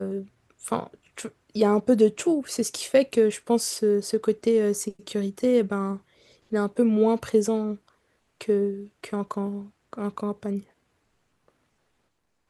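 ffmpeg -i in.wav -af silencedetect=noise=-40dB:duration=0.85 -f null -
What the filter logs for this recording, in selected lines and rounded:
silence_start: 10.63
silence_end: 12.49 | silence_duration: 1.86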